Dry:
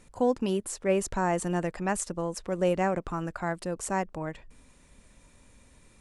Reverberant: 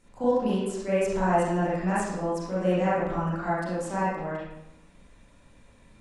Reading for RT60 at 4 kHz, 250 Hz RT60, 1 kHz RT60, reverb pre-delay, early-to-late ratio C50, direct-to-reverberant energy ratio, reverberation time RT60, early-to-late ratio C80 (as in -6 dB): 0.65 s, 0.90 s, 0.90 s, 31 ms, -2.5 dB, -10.0 dB, 0.90 s, 2.0 dB